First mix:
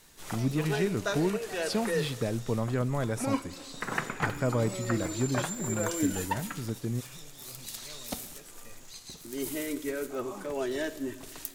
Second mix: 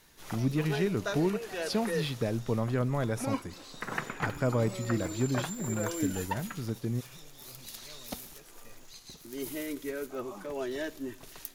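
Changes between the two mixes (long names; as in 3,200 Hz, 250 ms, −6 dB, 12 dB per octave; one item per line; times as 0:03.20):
first sound: send −11.5 dB
master: add parametric band 8,100 Hz −7.5 dB 0.33 octaves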